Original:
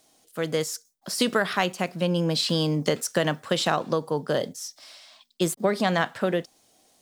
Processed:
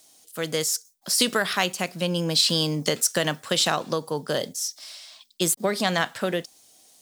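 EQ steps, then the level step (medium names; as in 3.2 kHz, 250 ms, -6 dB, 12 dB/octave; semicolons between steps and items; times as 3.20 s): treble shelf 2.8 kHz +11.5 dB; -2.0 dB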